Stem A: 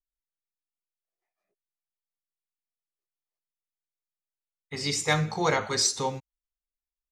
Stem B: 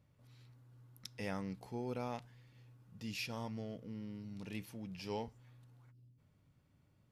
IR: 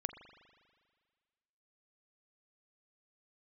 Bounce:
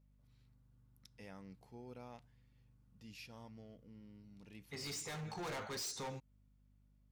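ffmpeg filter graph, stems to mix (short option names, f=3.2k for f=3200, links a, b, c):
-filter_complex "[0:a]asoftclip=type=hard:threshold=-30.5dB,volume=-4dB[a];[1:a]aeval=exprs='val(0)+0.00141*(sin(2*PI*50*n/s)+sin(2*PI*2*50*n/s)/2+sin(2*PI*3*50*n/s)/3+sin(2*PI*4*50*n/s)/4+sin(2*PI*5*50*n/s)/5)':c=same,volume=-11.5dB[b];[a][b]amix=inputs=2:normalize=0,alimiter=level_in=16.5dB:limit=-24dB:level=0:latency=1:release=134,volume=-16.5dB"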